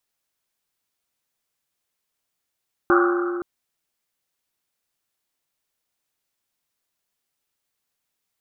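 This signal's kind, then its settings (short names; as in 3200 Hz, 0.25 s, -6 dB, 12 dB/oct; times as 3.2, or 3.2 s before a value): Risset drum length 0.52 s, pitch 350 Hz, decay 2.91 s, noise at 1300 Hz, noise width 400 Hz, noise 35%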